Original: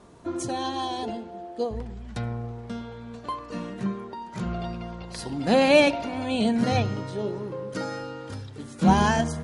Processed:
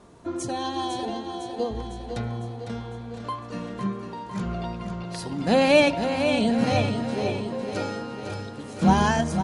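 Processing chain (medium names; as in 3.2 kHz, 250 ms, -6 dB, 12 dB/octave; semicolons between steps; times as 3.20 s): feedback delay 504 ms, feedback 57%, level -7.5 dB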